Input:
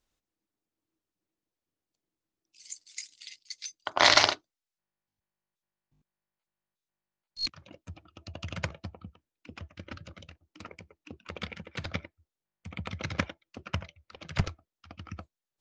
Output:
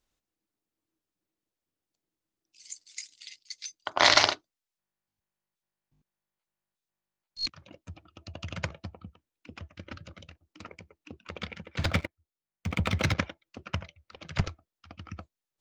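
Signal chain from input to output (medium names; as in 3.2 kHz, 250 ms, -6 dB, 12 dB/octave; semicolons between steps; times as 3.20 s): 11.79–13.14 s: waveshaping leveller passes 3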